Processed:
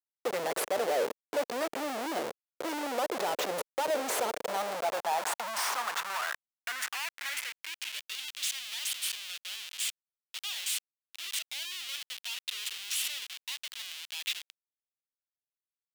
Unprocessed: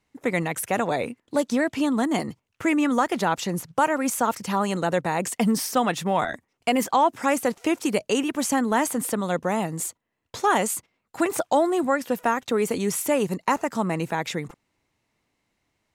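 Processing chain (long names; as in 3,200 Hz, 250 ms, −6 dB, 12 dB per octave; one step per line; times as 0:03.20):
comparator with hysteresis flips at −30.5 dBFS
high-pass filter sweep 500 Hz → 3,100 Hz, 0:04.27–0:08.16
level −7 dB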